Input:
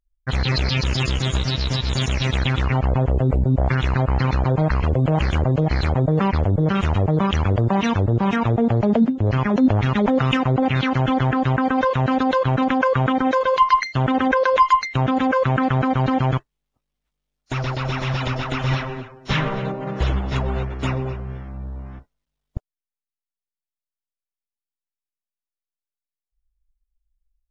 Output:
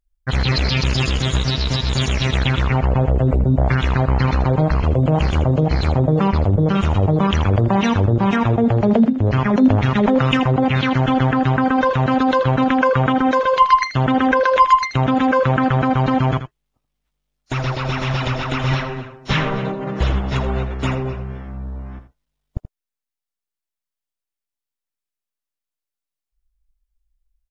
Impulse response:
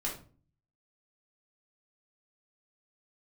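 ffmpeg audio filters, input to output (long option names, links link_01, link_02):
-filter_complex "[0:a]asettb=1/sr,asplit=3[link_01][link_02][link_03];[link_01]atrim=end=4.594[link_04];[link_02]atrim=start=4.59:end=7.23,asetpts=PTS-STARTPTS,afade=type=in:duration=0.004:curve=qsin,afade=type=out:start_time=2.636:duration=0.004:curve=qsin,equalizer=frequency=1800:width_type=o:width=0.81:gain=-5[link_05];[link_03]atrim=start=7.226[link_06];[link_04][link_05]acrossfade=duration=0.004:curve1=hsin:curve2=qsin[link_07];[link_07][link_06]acrossfade=duration=0.004:curve1=qsin:curve2=hsin,aecho=1:1:81:0.266,volume=2.5dB"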